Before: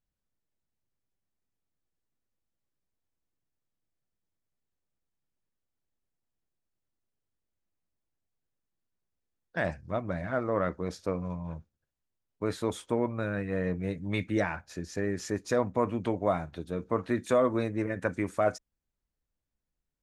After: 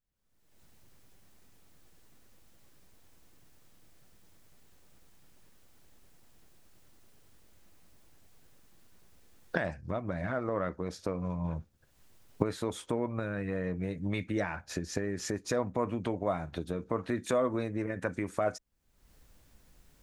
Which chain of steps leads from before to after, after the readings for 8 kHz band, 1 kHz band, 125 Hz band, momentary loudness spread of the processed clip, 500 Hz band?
+2.0 dB, −3.5 dB, −1.5 dB, 5 LU, −3.5 dB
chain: camcorder AGC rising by 48 dB per second
level −4 dB

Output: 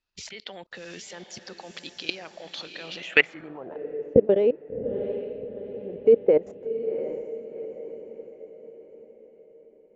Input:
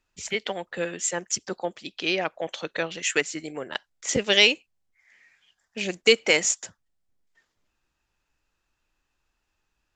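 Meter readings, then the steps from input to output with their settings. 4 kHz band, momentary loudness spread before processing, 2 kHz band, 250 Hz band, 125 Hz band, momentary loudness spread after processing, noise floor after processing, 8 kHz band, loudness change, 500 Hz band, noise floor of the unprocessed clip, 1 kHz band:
−12.0 dB, 15 LU, −3.5 dB, +1.0 dB, +0.5 dB, 20 LU, −55 dBFS, below −15 dB, −1.0 dB, +5.0 dB, −78 dBFS, −7.5 dB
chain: output level in coarse steps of 23 dB
feedback delay with all-pass diffusion 733 ms, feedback 48%, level −9.5 dB
low-pass filter sweep 4,600 Hz → 490 Hz, 0:02.94–0:03.86
level +5 dB

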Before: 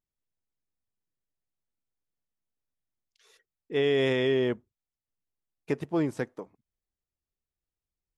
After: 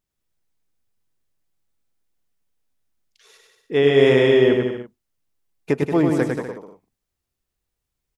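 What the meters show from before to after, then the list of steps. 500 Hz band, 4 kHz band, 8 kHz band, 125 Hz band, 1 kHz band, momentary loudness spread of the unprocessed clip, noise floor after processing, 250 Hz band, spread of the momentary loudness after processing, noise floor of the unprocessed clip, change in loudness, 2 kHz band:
+11.0 dB, +8.0 dB, can't be measured, +10.5 dB, +10.5 dB, 13 LU, −82 dBFS, +10.5 dB, 14 LU, below −85 dBFS, +10.0 dB, +9.5 dB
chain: dynamic equaliser 4,600 Hz, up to −4 dB, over −46 dBFS, Q 0.9
bouncing-ball delay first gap 100 ms, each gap 0.8×, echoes 5
level +8.5 dB

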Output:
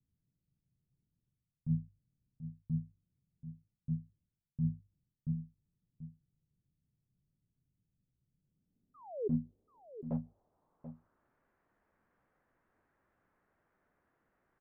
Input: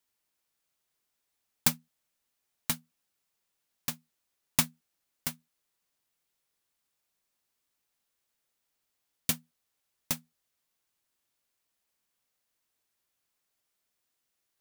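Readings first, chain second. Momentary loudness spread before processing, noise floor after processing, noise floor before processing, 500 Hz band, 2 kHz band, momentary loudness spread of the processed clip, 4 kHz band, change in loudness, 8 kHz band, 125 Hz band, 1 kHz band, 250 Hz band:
10 LU, below −85 dBFS, −82 dBFS, +7.5 dB, below −35 dB, 17 LU, below −40 dB, −7.5 dB, below −40 dB, +7.5 dB, −13.5 dB, +4.5 dB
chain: parametric band 2,700 Hz −11.5 dB 2.7 octaves
mains-hum notches 50/100 Hz
reversed playback
downward compressor, threshold −43 dBFS, peak gain reduction 21 dB
reversed playback
brickwall limiter −36.5 dBFS, peak gain reduction 9 dB
sound drawn into the spectrogram fall, 0:08.94–0:09.28, 390–1,300 Hz −47 dBFS
low-pass filter sweep 140 Hz → 1,700 Hz, 0:08.29–0:11.38
high-frequency loss of the air 440 metres
on a send: single-tap delay 735 ms −12 dB
on the sum: level +16.5 dB

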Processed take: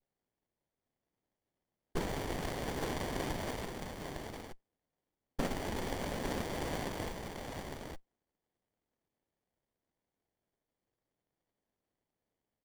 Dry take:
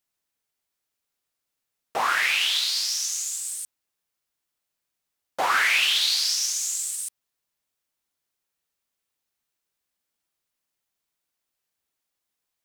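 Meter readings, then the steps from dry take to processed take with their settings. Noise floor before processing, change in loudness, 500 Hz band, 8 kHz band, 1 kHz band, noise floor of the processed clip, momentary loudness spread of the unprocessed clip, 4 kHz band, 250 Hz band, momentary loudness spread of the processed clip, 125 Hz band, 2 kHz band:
−83 dBFS, −17.5 dB, +1.5 dB, −23.0 dB, −12.0 dB, below −85 dBFS, 15 LU, −23.0 dB, +13.5 dB, 9 LU, can't be measured, −19.0 dB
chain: brickwall limiter −18.5 dBFS, peak gain reduction 9.5 dB
noise that follows the level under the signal 22 dB
multi-voice chorus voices 2, 0.17 Hz, delay 12 ms, depth 4.2 ms
cochlear-implant simulation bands 2
downward compressor, threshold −33 dBFS, peak gain reduction 8 dB
on a send: single-tap delay 856 ms −4.5 dB
on the sum: windowed peak hold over 33 samples
level +4 dB

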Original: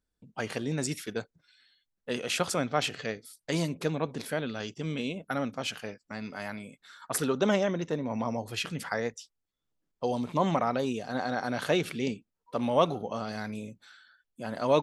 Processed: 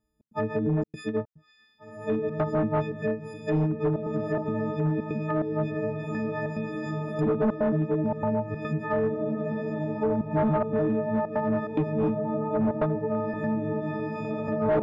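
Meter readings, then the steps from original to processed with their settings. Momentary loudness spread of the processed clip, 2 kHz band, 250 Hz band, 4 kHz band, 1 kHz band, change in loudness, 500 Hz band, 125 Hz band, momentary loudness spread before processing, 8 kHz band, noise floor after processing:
6 LU, −3.0 dB, +6.0 dB, below −15 dB, +0.5 dB, +3.5 dB, +4.0 dB, +7.5 dB, 14 LU, below −20 dB, −61 dBFS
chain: every partial snapped to a pitch grid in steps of 6 semitones
high-pass filter 290 Hz 6 dB per octave
spectral tilt −4.5 dB per octave
gate pattern "xx.xxxxx.x" 144 BPM −60 dB
parametric band 4,000 Hz −7 dB 3 octaves
on a send: feedback delay with all-pass diffusion 1,941 ms, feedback 54%, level −7 dB
on the sum: gain into a clipping stage and back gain 21.5 dB
treble cut that deepens with the level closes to 1,300 Hz, closed at −27 dBFS
in parallel at −1 dB: downward compressor, threshold −35 dBFS, peak gain reduction 11.5 dB

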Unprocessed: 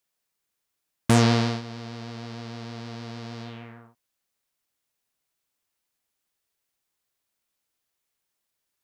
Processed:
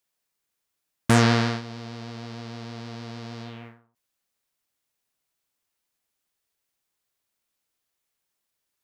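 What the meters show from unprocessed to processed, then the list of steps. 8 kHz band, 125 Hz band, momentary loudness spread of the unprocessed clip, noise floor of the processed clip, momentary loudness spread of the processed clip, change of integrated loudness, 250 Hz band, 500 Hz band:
0.0 dB, 0.0 dB, 20 LU, −81 dBFS, 19 LU, +4.5 dB, 0.0 dB, +0.5 dB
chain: dynamic equaliser 1,600 Hz, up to +6 dB, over −40 dBFS, Q 1.5
every ending faded ahead of time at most 130 dB per second

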